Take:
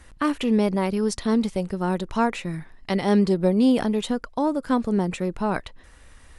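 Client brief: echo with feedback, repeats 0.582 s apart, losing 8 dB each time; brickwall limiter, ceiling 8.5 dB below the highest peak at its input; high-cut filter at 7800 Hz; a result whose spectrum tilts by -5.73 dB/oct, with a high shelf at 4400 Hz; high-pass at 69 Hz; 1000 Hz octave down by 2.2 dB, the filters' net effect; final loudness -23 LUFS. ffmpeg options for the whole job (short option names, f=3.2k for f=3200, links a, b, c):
-af "highpass=69,lowpass=7.8k,equalizer=f=1k:t=o:g=-3,highshelf=f=4.4k:g=5.5,alimiter=limit=-17.5dB:level=0:latency=1,aecho=1:1:582|1164|1746|2328|2910:0.398|0.159|0.0637|0.0255|0.0102,volume=4dB"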